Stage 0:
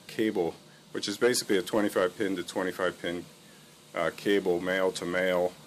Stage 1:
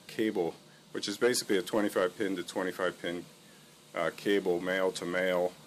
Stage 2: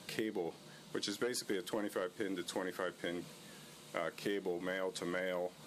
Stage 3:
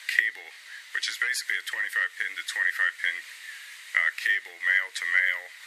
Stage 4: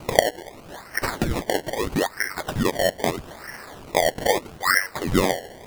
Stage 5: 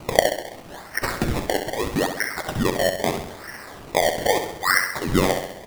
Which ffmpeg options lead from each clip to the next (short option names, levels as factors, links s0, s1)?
-af "equalizer=f=87:t=o:w=0.62:g=-5,volume=0.75"
-af "acompressor=threshold=0.0141:ratio=5,volume=1.19"
-af "highpass=f=1900:t=q:w=8.7,volume=2.51"
-af "acrusher=samples=24:mix=1:aa=0.000001:lfo=1:lforange=24:lforate=0.78,volume=1.58"
-af "aecho=1:1:66|132|198|264|330|396|462:0.398|0.219|0.12|0.0662|0.0364|0.02|0.011"